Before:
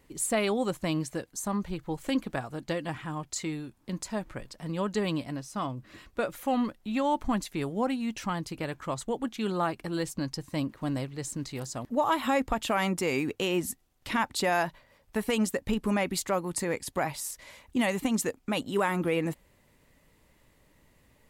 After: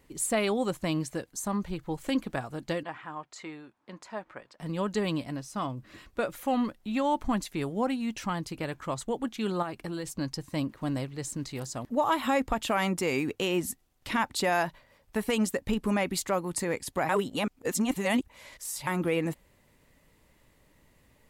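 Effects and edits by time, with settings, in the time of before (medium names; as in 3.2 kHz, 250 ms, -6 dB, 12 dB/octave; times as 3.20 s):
2.83–4.60 s: band-pass filter 1.1 kHz, Q 0.71
9.62–10.19 s: compression, threshold -30 dBFS
17.09–18.87 s: reverse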